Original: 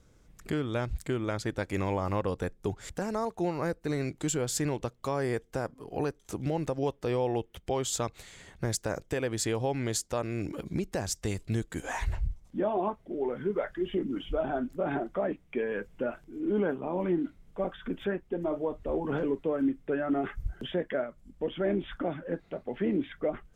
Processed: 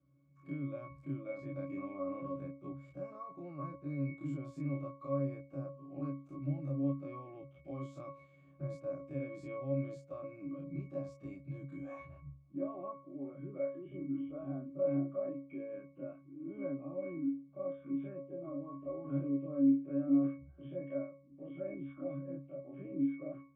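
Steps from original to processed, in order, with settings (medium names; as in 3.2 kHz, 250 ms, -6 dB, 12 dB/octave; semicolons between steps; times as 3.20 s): every event in the spectrogram widened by 60 ms; high-pass 130 Hz 24 dB/octave; pitch-class resonator C#, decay 0.4 s; trim +3.5 dB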